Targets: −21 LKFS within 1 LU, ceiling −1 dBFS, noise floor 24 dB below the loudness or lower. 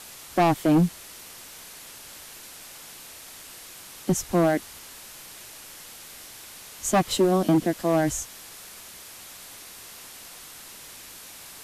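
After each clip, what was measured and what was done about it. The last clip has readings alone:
share of clipped samples 1.2%; peaks flattened at −15.0 dBFS; background noise floor −44 dBFS; target noise floor −48 dBFS; integrated loudness −23.5 LKFS; sample peak −15.0 dBFS; target loudness −21.0 LKFS
→ clipped peaks rebuilt −15 dBFS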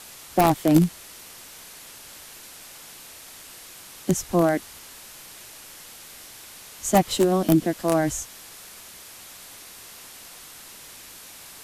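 share of clipped samples 0.0%; background noise floor −44 dBFS; target noise floor −47 dBFS
→ broadband denoise 6 dB, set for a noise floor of −44 dBFS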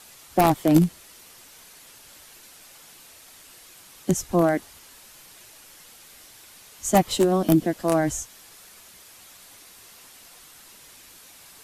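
background noise floor −49 dBFS; integrated loudness −22.5 LKFS; sample peak −6.0 dBFS; target loudness −21.0 LKFS
→ level +1.5 dB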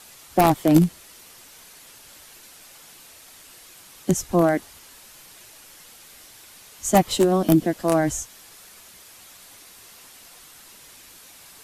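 integrated loudness −21.0 LKFS; sample peak −4.5 dBFS; background noise floor −48 dBFS

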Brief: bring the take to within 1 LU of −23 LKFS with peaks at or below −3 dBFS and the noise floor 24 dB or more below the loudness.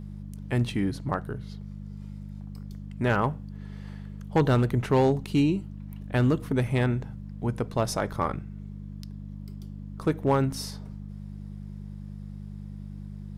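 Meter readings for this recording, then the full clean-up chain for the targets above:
share of clipped samples 0.4%; peaks flattened at −15.0 dBFS; mains hum 50 Hz; hum harmonics up to 200 Hz; level of the hum −36 dBFS; integrated loudness −27.0 LKFS; sample peak −15.0 dBFS; target loudness −23.0 LKFS
→ clipped peaks rebuilt −15 dBFS
hum removal 50 Hz, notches 4
level +4 dB

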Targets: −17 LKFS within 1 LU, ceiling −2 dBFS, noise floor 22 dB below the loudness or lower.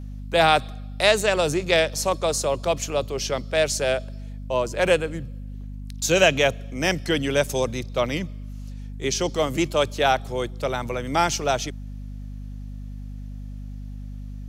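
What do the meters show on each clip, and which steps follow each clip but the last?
mains hum 50 Hz; hum harmonics up to 250 Hz; level of the hum −32 dBFS; integrated loudness −23.0 LKFS; sample peak −4.5 dBFS; target loudness −17.0 LKFS
→ mains-hum notches 50/100/150/200/250 Hz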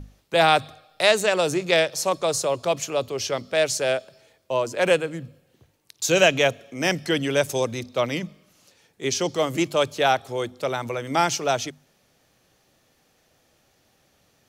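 mains hum none found; integrated loudness −23.0 LKFS; sample peak −5.0 dBFS; target loudness −17.0 LKFS
→ level +6 dB
brickwall limiter −2 dBFS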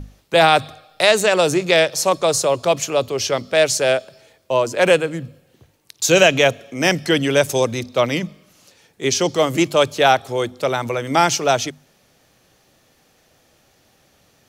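integrated loudness −17.5 LKFS; sample peak −2.0 dBFS; background noise floor −59 dBFS

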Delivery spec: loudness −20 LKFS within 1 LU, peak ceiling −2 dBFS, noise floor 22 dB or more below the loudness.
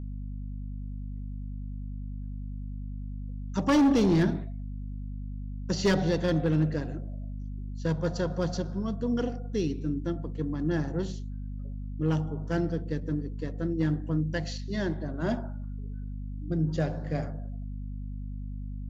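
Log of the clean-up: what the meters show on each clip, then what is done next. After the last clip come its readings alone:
share of clipped samples 0.7%; peaks flattened at −18.0 dBFS; mains hum 50 Hz; hum harmonics up to 250 Hz; level of the hum −34 dBFS; integrated loudness −31.0 LKFS; sample peak −18.0 dBFS; target loudness −20.0 LKFS
→ clipped peaks rebuilt −18 dBFS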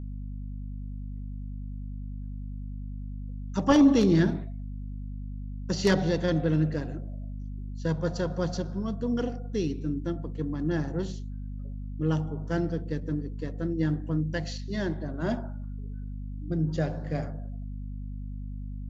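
share of clipped samples 0.0%; mains hum 50 Hz; hum harmonics up to 250 Hz; level of the hum −34 dBFS
→ mains-hum notches 50/100/150/200/250 Hz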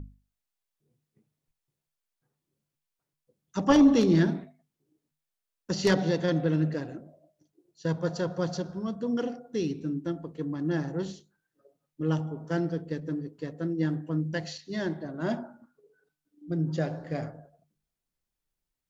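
mains hum none found; integrated loudness −29.0 LKFS; sample peak −8.5 dBFS; target loudness −20.0 LKFS
→ level +9 dB
brickwall limiter −2 dBFS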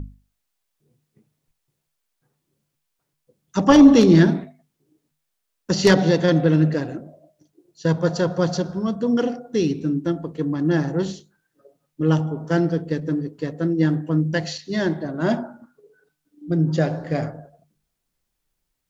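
integrated loudness −20.0 LKFS; sample peak −2.0 dBFS; background noise floor −77 dBFS

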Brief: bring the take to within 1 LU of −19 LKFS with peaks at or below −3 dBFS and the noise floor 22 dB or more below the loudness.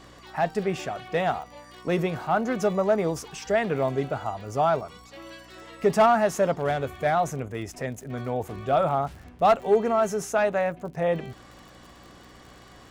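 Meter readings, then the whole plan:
crackle rate 53 per second; mains hum 60 Hz; hum harmonics up to 300 Hz; level of the hum −56 dBFS; integrated loudness −25.5 LKFS; sample peak −11.0 dBFS; target loudness −19.0 LKFS
→ click removal
hum removal 60 Hz, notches 5
level +6.5 dB

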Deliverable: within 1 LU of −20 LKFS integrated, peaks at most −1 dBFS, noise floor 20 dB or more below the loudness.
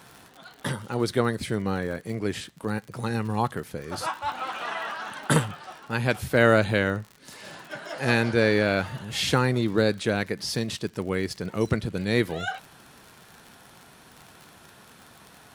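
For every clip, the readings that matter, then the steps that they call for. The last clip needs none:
crackle rate 58 per second; integrated loudness −26.5 LKFS; sample peak −4.5 dBFS; target loudness −20.0 LKFS
→ click removal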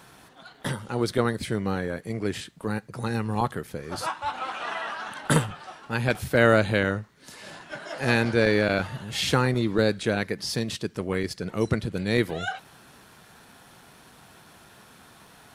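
crackle rate 0.19 per second; integrated loudness −26.5 LKFS; sample peak −4.5 dBFS; target loudness −20.0 LKFS
→ level +6.5 dB
brickwall limiter −1 dBFS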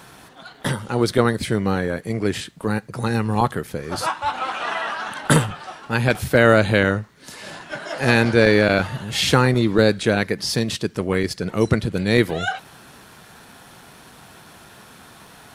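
integrated loudness −20.5 LKFS; sample peak −1.0 dBFS; background noise floor −46 dBFS

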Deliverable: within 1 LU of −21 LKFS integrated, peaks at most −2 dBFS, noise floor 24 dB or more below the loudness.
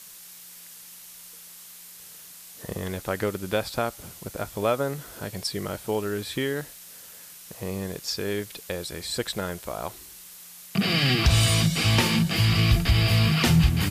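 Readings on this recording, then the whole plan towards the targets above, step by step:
background noise floor −46 dBFS; target noise floor −49 dBFS; integrated loudness −25.0 LKFS; sample peak −8.0 dBFS; target loudness −21.0 LKFS
→ broadband denoise 6 dB, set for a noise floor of −46 dBFS
level +4 dB

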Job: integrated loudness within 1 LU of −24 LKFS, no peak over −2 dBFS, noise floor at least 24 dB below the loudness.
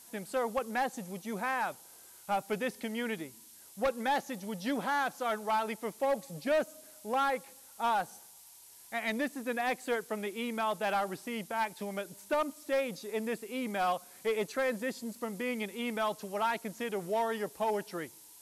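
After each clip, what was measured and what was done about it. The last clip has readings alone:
share of clipped samples 1.4%; peaks flattened at −24.5 dBFS; background noise floor −55 dBFS; target noise floor −58 dBFS; integrated loudness −34.0 LKFS; sample peak −24.5 dBFS; target loudness −24.0 LKFS
→ clipped peaks rebuilt −24.5 dBFS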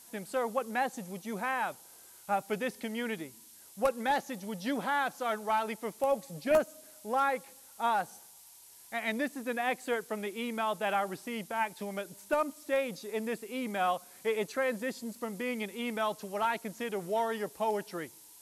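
share of clipped samples 0.0%; background noise floor −55 dBFS; target noise floor −58 dBFS
→ noise reduction from a noise print 6 dB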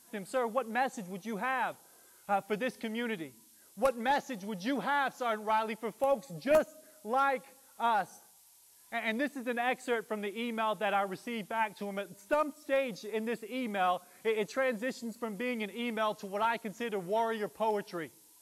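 background noise floor −61 dBFS; integrated loudness −33.5 LKFS; sample peak −15.5 dBFS; target loudness −24.0 LKFS
→ level +9.5 dB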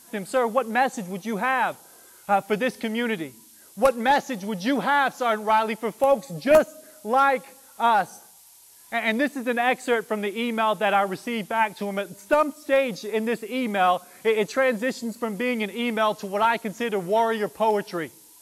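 integrated loudness −24.0 LKFS; sample peak −6.0 dBFS; background noise floor −51 dBFS

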